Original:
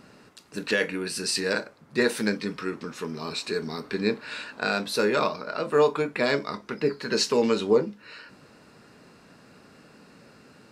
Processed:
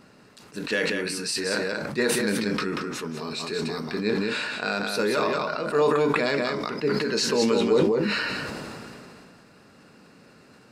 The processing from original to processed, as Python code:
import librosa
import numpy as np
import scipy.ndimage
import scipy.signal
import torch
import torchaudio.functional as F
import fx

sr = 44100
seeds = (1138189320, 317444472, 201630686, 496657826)

p1 = x + fx.echo_single(x, sr, ms=186, db=-5.0, dry=0)
p2 = fx.sustainer(p1, sr, db_per_s=21.0)
y = p2 * librosa.db_to_amplitude(-2.0)